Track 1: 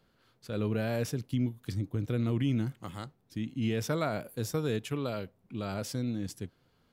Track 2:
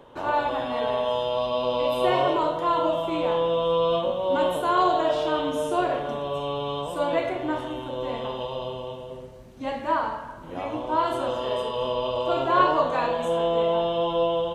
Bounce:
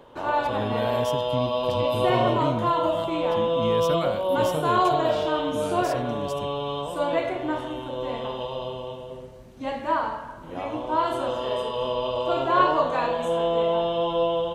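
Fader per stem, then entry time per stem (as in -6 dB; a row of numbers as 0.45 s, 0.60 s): +0.5 dB, 0.0 dB; 0.00 s, 0.00 s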